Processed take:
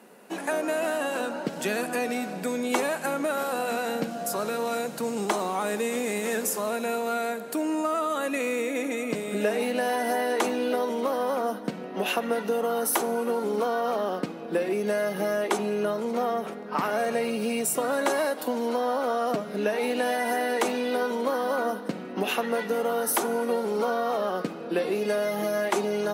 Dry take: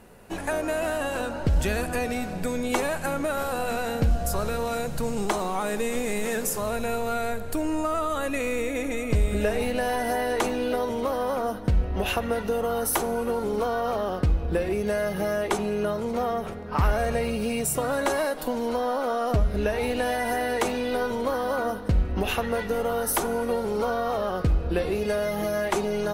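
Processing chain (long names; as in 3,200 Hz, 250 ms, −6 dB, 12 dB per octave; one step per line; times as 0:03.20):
Butterworth high-pass 190 Hz 36 dB per octave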